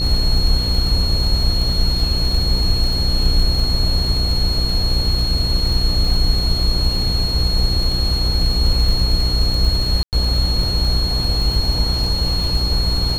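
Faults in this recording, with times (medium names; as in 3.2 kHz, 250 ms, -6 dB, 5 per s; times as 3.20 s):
buzz 60 Hz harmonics 9 -22 dBFS
crackle 24 per s -22 dBFS
whine 4.3 kHz -21 dBFS
10.03–10.13 s: dropout 98 ms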